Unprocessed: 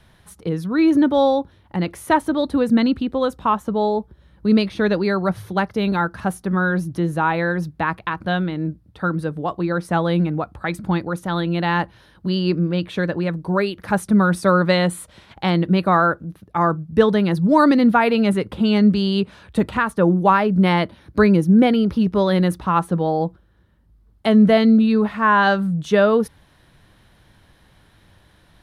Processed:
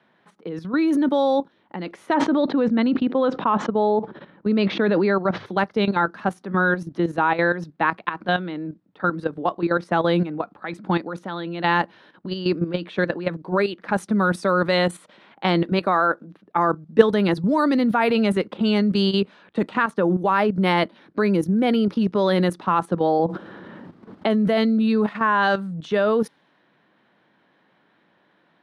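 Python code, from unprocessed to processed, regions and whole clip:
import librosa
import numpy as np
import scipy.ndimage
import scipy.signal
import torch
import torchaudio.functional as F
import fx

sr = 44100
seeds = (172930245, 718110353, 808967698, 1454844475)

y = fx.chain(x, sr, fx.gaussian_blur(sigma=2.2),
    fx.sustainer(db_per_s=52.0), at=(2.14, 5.46))
y = fx.chain(y, sr, fx.low_shelf(hz=140.0, db=-10.0),
    fx.notch(hz=3000.0, q=19.0), at=(15.63, 16.27))
y = fx.chain(y, sr, fx.high_shelf(hz=2500.0, db=-8.0),
    fx.env_flatten(amount_pct=70), at=(23.19, 24.3))
y = fx.env_lowpass(y, sr, base_hz=2400.0, full_db=-11.0)
y = scipy.signal.sosfilt(scipy.signal.butter(4, 200.0, 'highpass', fs=sr, output='sos'), y)
y = fx.level_steps(y, sr, step_db=11)
y = y * 10.0 ** (3.5 / 20.0)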